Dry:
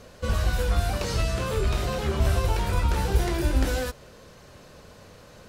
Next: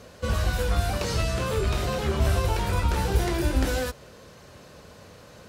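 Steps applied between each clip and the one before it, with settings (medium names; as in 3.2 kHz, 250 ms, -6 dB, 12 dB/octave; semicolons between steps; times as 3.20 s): high-pass 51 Hz; trim +1 dB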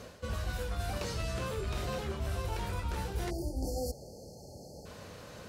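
spectral selection erased 3.30–4.86 s, 890–4200 Hz; reverse; compression 5:1, threshold -33 dBFS, peak gain reduction 15 dB; reverse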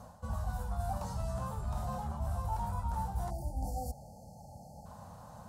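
FFT filter 210 Hz 0 dB, 390 Hz -20 dB, 820 Hz +8 dB, 2.3 kHz -21 dB, 5.8 kHz -10 dB, 8.2 kHz -4 dB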